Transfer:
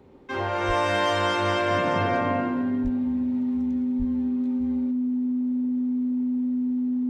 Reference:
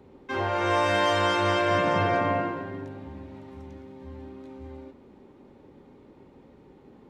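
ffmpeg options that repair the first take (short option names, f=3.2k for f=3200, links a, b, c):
-filter_complex "[0:a]bandreject=f=250:w=30,asplit=3[a][b][c];[a]afade=t=out:st=0.67:d=0.02[d];[b]highpass=f=140:w=0.5412,highpass=f=140:w=1.3066,afade=t=in:st=0.67:d=0.02,afade=t=out:st=0.79:d=0.02[e];[c]afade=t=in:st=0.79:d=0.02[f];[d][e][f]amix=inputs=3:normalize=0,asplit=3[g][h][i];[g]afade=t=out:st=2.83:d=0.02[j];[h]highpass=f=140:w=0.5412,highpass=f=140:w=1.3066,afade=t=in:st=2.83:d=0.02,afade=t=out:st=2.95:d=0.02[k];[i]afade=t=in:st=2.95:d=0.02[l];[j][k][l]amix=inputs=3:normalize=0,asplit=3[m][n][o];[m]afade=t=out:st=3.98:d=0.02[p];[n]highpass=f=140:w=0.5412,highpass=f=140:w=1.3066,afade=t=in:st=3.98:d=0.02,afade=t=out:st=4.1:d=0.02[q];[o]afade=t=in:st=4.1:d=0.02[r];[p][q][r]amix=inputs=3:normalize=0"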